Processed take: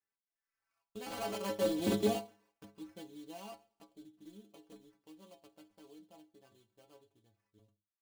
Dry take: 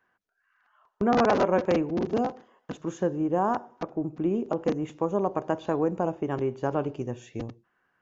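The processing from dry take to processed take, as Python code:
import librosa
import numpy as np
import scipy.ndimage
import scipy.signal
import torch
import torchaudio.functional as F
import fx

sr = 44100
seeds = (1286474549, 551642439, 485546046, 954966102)

y = fx.doppler_pass(x, sr, speed_mps=19, closest_m=2.0, pass_at_s=1.91)
y = fx.sample_hold(y, sr, seeds[0], rate_hz=3700.0, jitter_pct=20)
y = fx.stiff_resonator(y, sr, f0_hz=100.0, decay_s=0.29, stiffness=0.008)
y = F.gain(torch.from_numpy(y), 8.5).numpy()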